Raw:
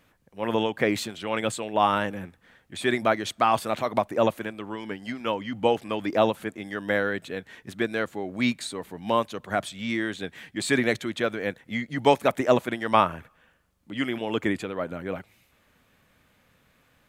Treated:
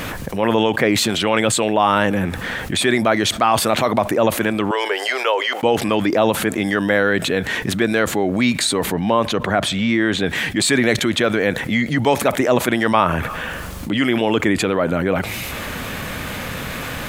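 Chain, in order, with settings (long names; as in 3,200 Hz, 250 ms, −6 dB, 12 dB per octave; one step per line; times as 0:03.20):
0:04.71–0:05.63: Chebyshev high-pass filter 400 Hz, order 5
0:08.92–0:10.26: high-shelf EQ 4,200 Hz −11 dB
envelope flattener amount 70%
level +1.5 dB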